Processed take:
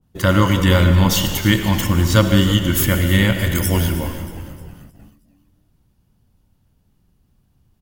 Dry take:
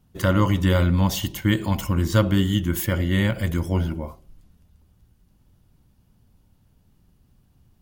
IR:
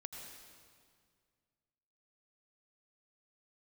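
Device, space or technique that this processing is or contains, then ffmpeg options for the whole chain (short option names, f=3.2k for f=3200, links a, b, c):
keyed gated reverb: -filter_complex "[0:a]asettb=1/sr,asplit=3[a][b][c];[a]atrim=end=3.554[d];[b]atrim=start=3.55:end=4.07,asetpts=PTS-STARTPTS,afade=t=in:d=0.004:c=qsin,afade=t=out:st=0.516:d=0.004:c=qsin,aemphasis=mode=production:type=75kf[e];[c]atrim=start=4.066[f];[d][e]acrossfade=d=0.004:c1=hsin:c2=qsin[g];[g][f]acrossfade=d=0.004:c1=qsin:c2=hsin,asplit=6[h][i][j][k][l][m];[i]adelay=313,afreqshift=-75,volume=-15dB[n];[j]adelay=626,afreqshift=-150,volume=-20.4dB[o];[k]adelay=939,afreqshift=-225,volume=-25.7dB[p];[l]adelay=1252,afreqshift=-300,volume=-31.1dB[q];[m]adelay=1565,afreqshift=-375,volume=-36.4dB[r];[h][n][o][p][q][r]amix=inputs=6:normalize=0,asplit=3[s][t][u];[1:a]atrim=start_sample=2205[v];[t][v]afir=irnorm=-1:irlink=0[w];[u]apad=whole_len=413717[x];[w][x]sidechaingate=range=-33dB:threshold=-49dB:ratio=16:detection=peak,volume=5dB[y];[s][y]amix=inputs=2:normalize=0,adynamicequalizer=threshold=0.02:dfrequency=1500:dqfactor=0.7:tfrequency=1500:tqfactor=0.7:attack=5:release=100:ratio=0.375:range=2.5:mode=boostabove:tftype=highshelf,volume=-1.5dB"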